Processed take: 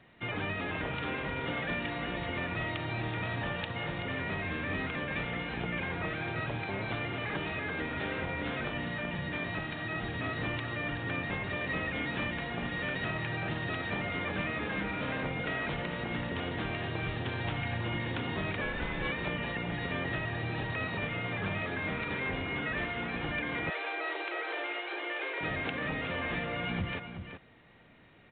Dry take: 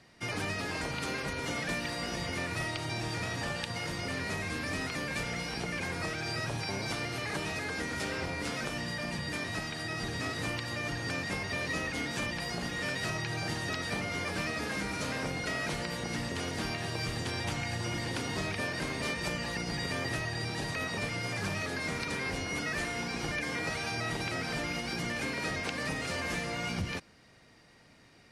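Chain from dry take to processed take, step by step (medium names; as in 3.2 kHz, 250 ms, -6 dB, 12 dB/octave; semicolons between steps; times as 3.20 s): echo from a far wall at 65 m, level -8 dB; 18.61–19.12 s: frequency shift -94 Hz; 23.70–25.41 s: brick-wall FIR high-pass 310 Hz; µ-law 64 kbps 8 kHz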